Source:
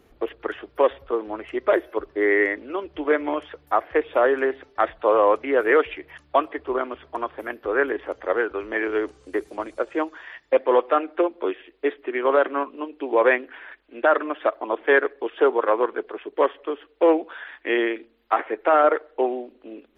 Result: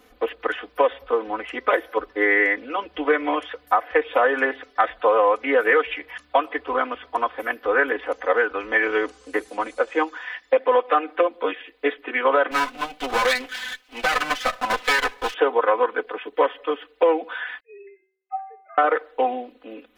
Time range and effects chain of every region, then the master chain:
12.51–15.34 s: comb filter that takes the minimum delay 7.9 ms + treble shelf 2.2 kHz +10 dB + compression, threshold -20 dBFS
17.60–18.78 s: formants replaced by sine waves + dynamic bell 450 Hz, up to +5 dB, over -33 dBFS, Q 1.3 + inharmonic resonator 380 Hz, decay 0.71 s, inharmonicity 0.008
whole clip: bass shelf 430 Hz -11.5 dB; comb 4 ms, depth 99%; compression, threshold -19 dBFS; trim +5 dB

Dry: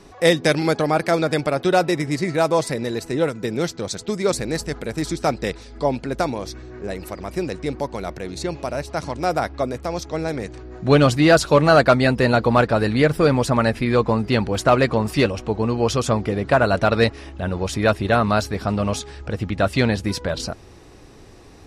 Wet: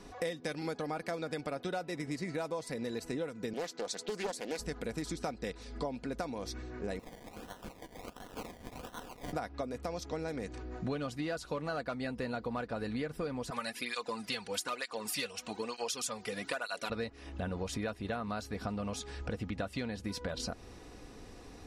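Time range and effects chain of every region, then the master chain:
3.53–4.59 s: high-pass 300 Hz + loudspeaker Doppler distortion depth 0.39 ms
6.99–9.33 s: one-bit delta coder 64 kbps, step -37 dBFS + Bessel high-pass 2 kHz, order 4 + decimation with a swept rate 26×, swing 60% 1.4 Hz
13.50–16.90 s: tilt EQ +4.5 dB/octave + cancelling through-zero flanger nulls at 1.1 Hz, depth 3.7 ms
whole clip: comb 4.1 ms, depth 35%; compression 12:1, threshold -28 dBFS; trim -5.5 dB

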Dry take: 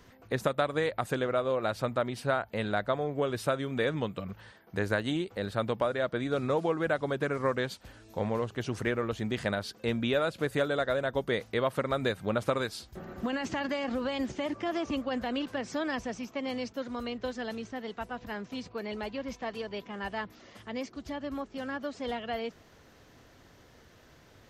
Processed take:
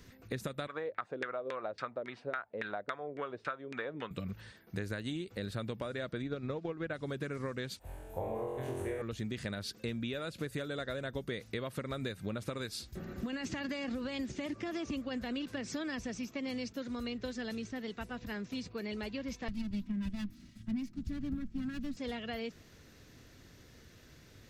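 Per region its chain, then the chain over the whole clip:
0.67–4.11 s: LFO low-pass saw down 3.6 Hz 380–1800 Hz + frequency weighting ITU-R 468
6.22–6.94 s: transient shaper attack +6 dB, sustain -6 dB + distance through air 150 m + tape noise reduction on one side only decoder only
7.79–9.02 s: FFT filter 100 Hz 0 dB, 210 Hz -15 dB, 330 Hz -5 dB, 810 Hz +9 dB, 1.4 kHz -9 dB, 2.7 kHz -11 dB, 5.1 kHz -23 dB, 9.9 kHz -1 dB + flutter echo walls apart 3.9 m, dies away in 1.2 s
19.48–21.97 s: comb filter that takes the minimum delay 3.1 ms + resonant low shelf 290 Hz +14 dB, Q 3 + three bands expanded up and down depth 100%
whole clip: peaking EQ 830 Hz -11 dB 1.7 oct; band-stop 3.1 kHz, Q 17; compression, threshold -37 dBFS; trim +2.5 dB

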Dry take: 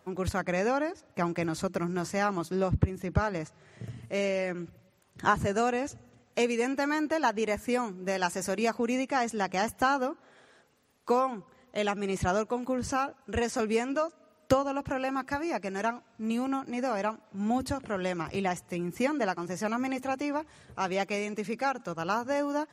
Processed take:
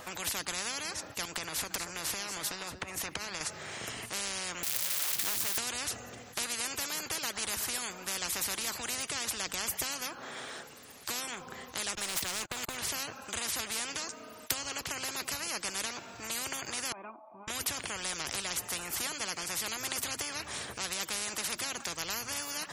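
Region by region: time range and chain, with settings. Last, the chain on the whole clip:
1.25–3.41 s: compression, threshold -35 dBFS + delay 230 ms -19 dB
4.63–5.58 s: jump at every zero crossing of -35.5 dBFS + pre-emphasis filter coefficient 0.97
11.95–12.77 s: gate -38 dBFS, range -25 dB + waveshaping leveller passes 2 + compression, threshold -28 dBFS
16.92–17.48 s: cascade formant filter a + comb 3.3 ms, depth 74%
whole clip: tilt EQ +1.5 dB/octave; spectrum-flattening compressor 10:1

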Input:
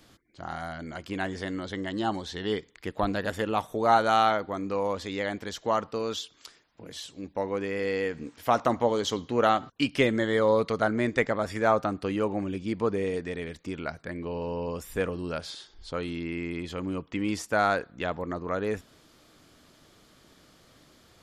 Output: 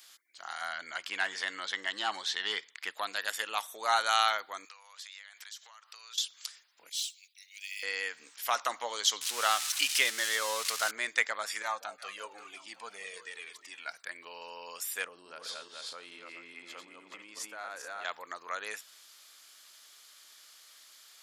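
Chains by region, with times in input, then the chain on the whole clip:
0.61–2.94 s: tone controls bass +13 dB, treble 0 dB + overdrive pedal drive 12 dB, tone 2.3 kHz, clips at -11.5 dBFS
4.65–6.18 s: high-pass 1.2 kHz + compression 20:1, threshold -46 dBFS
6.89–7.83 s: steep high-pass 2.3 kHz 48 dB/octave + modulation noise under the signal 25 dB
9.21–10.91 s: zero-crossing glitches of -20.5 dBFS + distance through air 63 m
11.62–13.94 s: echo whose repeats swap between lows and highs 180 ms, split 860 Hz, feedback 66%, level -11.5 dB + Shepard-style flanger falling 1 Hz
15.04–18.05 s: backward echo that repeats 214 ms, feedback 42%, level -3 dB + tilt shelf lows +7.5 dB, about 1.3 kHz + compression 10:1, threshold -29 dBFS
whole clip: high-pass 1.3 kHz 12 dB/octave; treble shelf 4 kHz +11 dB

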